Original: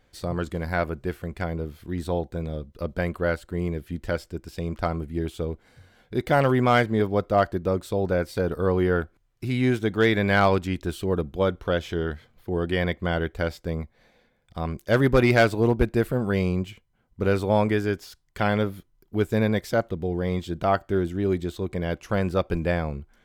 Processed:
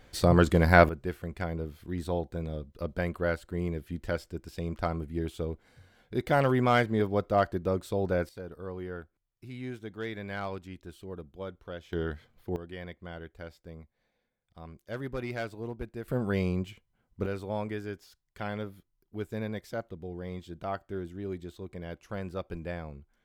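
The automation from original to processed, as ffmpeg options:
-af "asetnsamples=n=441:p=0,asendcmd='0.89 volume volume -4.5dB;8.29 volume volume -16.5dB;11.93 volume volume -5dB;12.56 volume volume -17dB;16.08 volume volume -5dB;17.26 volume volume -12.5dB',volume=2.24"

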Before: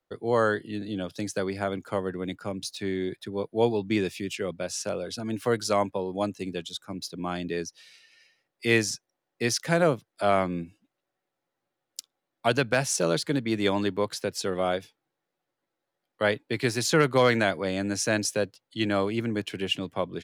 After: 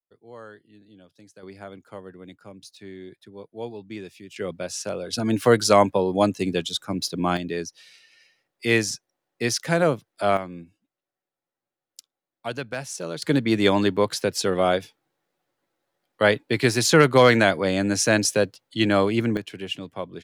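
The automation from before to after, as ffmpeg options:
-af "asetnsamples=n=441:p=0,asendcmd='1.43 volume volume -10.5dB;4.36 volume volume 1dB;5.13 volume volume 8.5dB;7.37 volume volume 2dB;10.37 volume volume -7dB;13.22 volume volume 6dB;19.37 volume volume -3dB',volume=0.112"

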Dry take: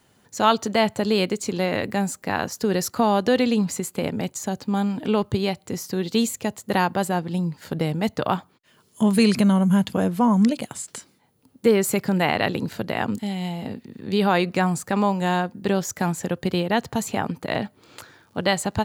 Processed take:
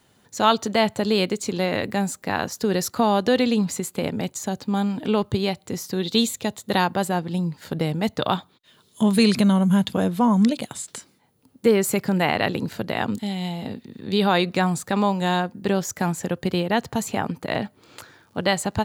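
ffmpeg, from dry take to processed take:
-af "asetnsamples=n=441:p=0,asendcmd='6 equalizer g 12.5;6.84 equalizer g 3.5;8.2 equalizer g 14;9.02 equalizer g 8;10.95 equalizer g 0.5;12.91 equalizer g 7.5;15.4 equalizer g 0',equalizer=f=3700:t=o:w=0.28:g=4"

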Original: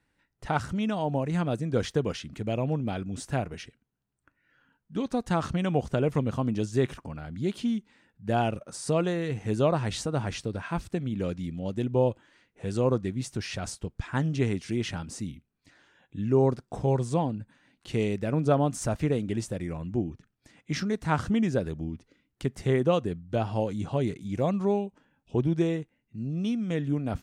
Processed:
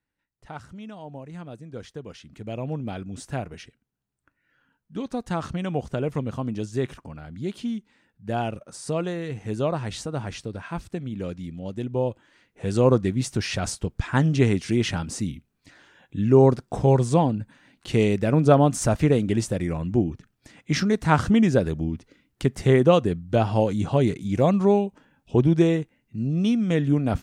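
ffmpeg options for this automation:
-af "volume=2.24,afade=t=in:st=2.04:d=0.76:silence=0.316228,afade=t=in:st=12.11:d=0.79:silence=0.398107"

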